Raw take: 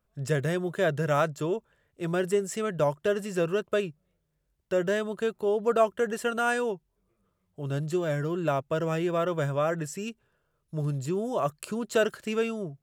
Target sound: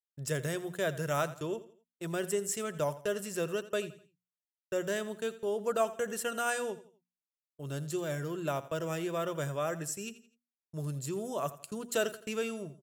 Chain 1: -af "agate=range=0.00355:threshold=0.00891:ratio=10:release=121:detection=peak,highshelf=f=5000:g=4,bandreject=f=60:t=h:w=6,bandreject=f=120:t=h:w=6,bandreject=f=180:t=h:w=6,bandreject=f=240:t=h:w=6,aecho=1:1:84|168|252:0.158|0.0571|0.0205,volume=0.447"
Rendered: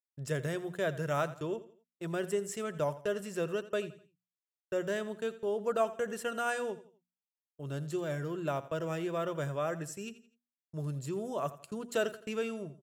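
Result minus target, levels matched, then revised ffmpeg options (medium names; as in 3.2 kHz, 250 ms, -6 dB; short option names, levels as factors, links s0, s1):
8 kHz band -7.0 dB
-af "agate=range=0.00355:threshold=0.00891:ratio=10:release=121:detection=peak,highshelf=f=5000:g=14.5,bandreject=f=60:t=h:w=6,bandreject=f=120:t=h:w=6,bandreject=f=180:t=h:w=6,bandreject=f=240:t=h:w=6,aecho=1:1:84|168|252:0.158|0.0571|0.0205,volume=0.447"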